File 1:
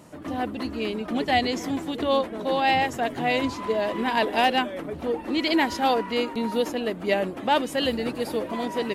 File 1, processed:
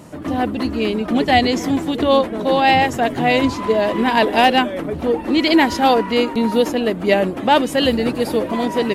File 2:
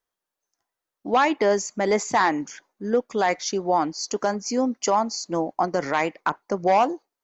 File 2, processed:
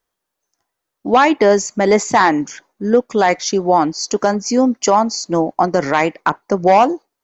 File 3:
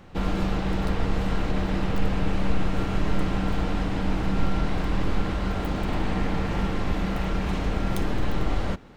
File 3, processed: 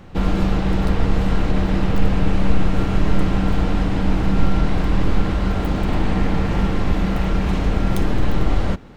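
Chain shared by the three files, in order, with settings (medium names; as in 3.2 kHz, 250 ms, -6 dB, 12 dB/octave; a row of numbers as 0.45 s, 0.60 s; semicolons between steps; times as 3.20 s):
bass shelf 340 Hz +4 dB; peak normalisation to -2 dBFS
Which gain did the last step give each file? +7.0 dB, +7.0 dB, +4.0 dB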